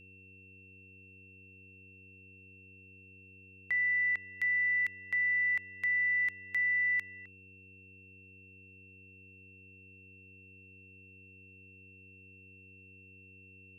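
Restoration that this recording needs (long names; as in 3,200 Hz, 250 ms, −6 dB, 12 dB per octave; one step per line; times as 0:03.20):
hum removal 95.4 Hz, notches 5
notch filter 2,700 Hz, Q 30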